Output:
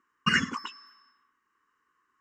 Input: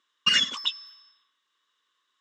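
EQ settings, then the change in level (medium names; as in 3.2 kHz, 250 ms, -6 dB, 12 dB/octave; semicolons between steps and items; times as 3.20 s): tilt shelf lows +9 dB, about 1.5 kHz; static phaser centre 1.5 kHz, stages 4; +5.0 dB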